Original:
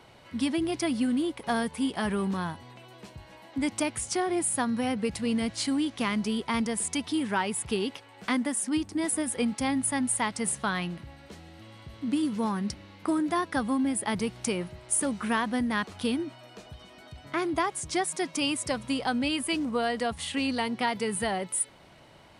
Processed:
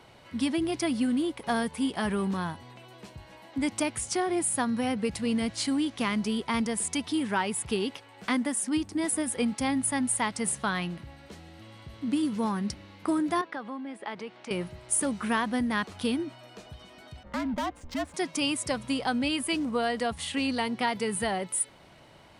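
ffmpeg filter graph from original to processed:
-filter_complex "[0:a]asettb=1/sr,asplit=3[s0][s1][s2];[s0]atrim=end=13.414[s3];[s1]atrim=start=13.41:end=14.51,asetpts=PTS-STARTPTS,afade=t=in:d=0.004:c=qsin,afade=t=out:st=1.096:d=0.004:c=qsin,acompressor=threshold=0.0316:ratio=4:attack=3.2:release=140:knee=1:detection=peak,highpass=350,lowpass=3100[s4];[s2]atrim=start=14.506[s5];[s3][s4]acrossfade=d=0.004:c1=hsin:c2=qsin[s6];[s6][s5]acrossfade=d=0.004:c1=qsin:c2=hsin,asettb=1/sr,asplit=3[s7][s8][s9];[s7]atrim=end=17.234[s10];[s8]atrim=start=17.23:end=18.14,asetpts=PTS-STARTPTS,afade=t=in:d=0.004:c=qsin,afade=t=out:st=0.906:d=0.004:c=qsin,asoftclip=type=hard:threshold=0.0447,adynamicsmooth=sensitivity=5.5:basefreq=1300,afreqshift=-77[s11];[s9]atrim=start=18.136[s12];[s10][s11]acrossfade=d=0.004:c1=hsin:c2=qsin[s13];[s13][s12]acrossfade=d=0.004:c1=qsin:c2=hsin"

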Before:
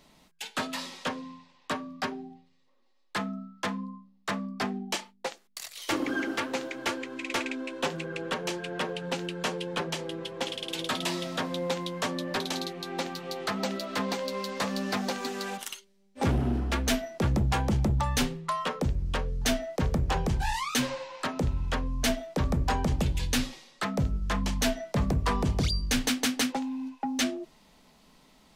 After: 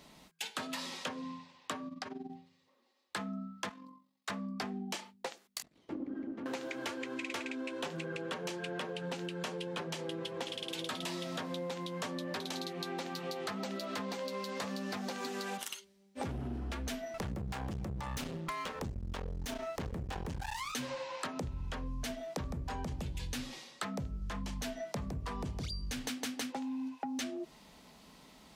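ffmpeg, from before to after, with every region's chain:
-filter_complex "[0:a]asettb=1/sr,asplit=3[s0][s1][s2];[s0]atrim=end=1.884[s3];[s1]atrim=start=1.88:end=2.3,asetpts=PTS-STARTPTS,afade=t=in:d=0.004:c=qsin,afade=t=out:st=0.416:d=0.004:c=qsin,lowpass=9100,acompressor=threshold=0.0126:ratio=4:attack=3.2:release=140:knee=1:detection=peak,tremolo=f=21:d=0.788[s4];[s2]atrim=start=2.296[s5];[s3][s4]acrossfade=d=0.004:c1=hsin:c2=qsin[s6];[s6][s5]acrossfade=d=0.004:c1=qsin:c2=hsin,asettb=1/sr,asplit=3[s7][s8][s9];[s7]atrim=end=3.694[s10];[s8]atrim=start=3.69:end=4.3,asetpts=PTS-STARTPTS,afade=t=in:d=0.004:c=qsin,afade=t=out:st=0.606:d=0.004:c=qsin,highpass=f=1200:p=1,aecho=1:1:7.3:0.59,atrim=end_sample=26901,tremolo=f=45:d=0.519[s11];[s9]atrim=start=4.296[s12];[s10][s11]acrossfade=d=0.004:c1=hsin:c2=qsin[s13];[s13][s12]acrossfade=d=0.004:c1=qsin:c2=hsin,asettb=1/sr,asplit=3[s14][s15][s16];[s14]atrim=end=5.624[s17];[s15]atrim=start=5.62:end=6.46,asetpts=PTS-STARTPTS,afade=t=in:d=0.004:c=qsin,afade=t=out:st=0.836:d=0.004:c=qsin,aeval=exprs='if(lt(val(0),0),0.251*val(0),val(0))':c=same,bandpass=f=230:t=q:w=2[s18];[s16]atrim=start=6.456[s19];[s17][s18]acrossfade=d=0.004:c1=hsin:c2=qsin[s20];[s20][s19]acrossfade=d=0.004:c1=qsin:c2=hsin,asettb=1/sr,asplit=3[s21][s22][s23];[s21]atrim=end=17.144[s24];[s22]atrim=start=17.14:end=20.72,asetpts=PTS-STARTPTS,afade=t=in:d=0.004:c=qsin,afade=t=out:st=3.576:d=0.004:c=qsin,acontrast=69,aeval=exprs='max(val(0),0)':c=same[s25];[s23]atrim=start=20.716[s26];[s24][s25]acrossfade=d=0.004:c1=hsin:c2=qsin[s27];[s27][s26]acrossfade=d=0.004:c1=qsin:c2=hsin,highpass=40,alimiter=limit=0.0668:level=0:latency=1:release=180,acompressor=threshold=0.0126:ratio=6,volume=1.26"

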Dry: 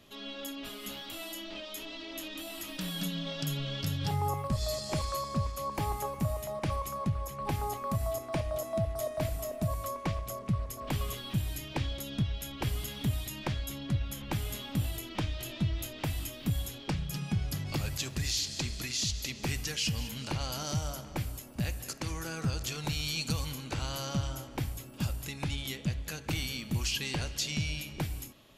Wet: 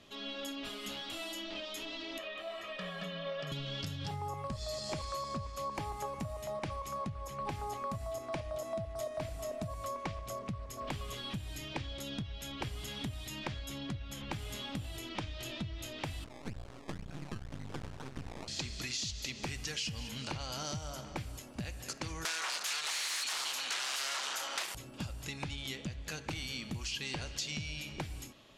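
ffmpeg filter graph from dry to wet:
-filter_complex "[0:a]asettb=1/sr,asplit=3[s0][s1][s2];[s0]atrim=end=2.184[s3];[s1]atrim=start=2.18:end=3.52,asetpts=PTS-STARTPTS,afade=t=in:d=0.004:c=qsin,afade=t=out:st=1.336:d=0.004:c=qsin,acrossover=split=220 2900:gain=0.158 1 0.0891[s4][s5][s6];[s4][s5][s6]amix=inputs=3:normalize=0,aecho=1:1:1.7:0.98,atrim=end_sample=59094[s7];[s2]atrim=start=3.516[s8];[s3][s7]acrossfade=d=0.004:c1=hsin:c2=qsin[s9];[s9][s8]acrossfade=d=0.004:c1=qsin:c2=hsin,asettb=1/sr,asplit=3[s10][s11][s12];[s10]atrim=end=16.244[s13];[s11]atrim=start=16.24:end=18.48,asetpts=PTS-STARTPTS,afade=t=in:d=0.004:c=qsin,afade=t=out:st=2.236:d=0.004:c=qsin,lowpass=2900,acrusher=samples=21:mix=1:aa=0.000001:lfo=1:lforange=21:lforate=2,aeval=exprs='max(val(0),0)':c=same[s14];[s12]atrim=start=18.476[s15];[s13][s14]acrossfade=d=0.004:c1=hsin:c2=qsin[s16];[s16][s15]acrossfade=d=0.004:c1=qsin:c2=hsin,asettb=1/sr,asplit=3[s17][s18][s19];[s17]atrim=end=22.254[s20];[s18]atrim=start=22.25:end=24.75,asetpts=PTS-STARTPTS,afade=t=in:d=0.004:c=qsin,afade=t=out:st=2.496:d=0.004:c=qsin,aeval=exprs='0.0944*sin(PI/2*7.94*val(0)/0.0944)':c=same,highpass=1100[s21];[s19]atrim=start=24.746[s22];[s20][s21]acrossfade=d=0.004:c1=hsin:c2=qsin[s23];[s23][s22]acrossfade=d=0.004:c1=qsin:c2=hsin,lowpass=7900,acompressor=threshold=0.0178:ratio=6,lowshelf=f=260:g=-4,volume=1.12"

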